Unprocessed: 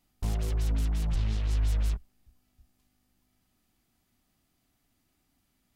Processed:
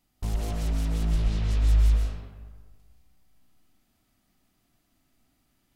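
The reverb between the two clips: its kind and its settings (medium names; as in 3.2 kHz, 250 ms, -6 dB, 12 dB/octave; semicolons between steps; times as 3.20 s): algorithmic reverb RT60 1.5 s, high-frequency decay 0.55×, pre-delay 90 ms, DRR -1 dB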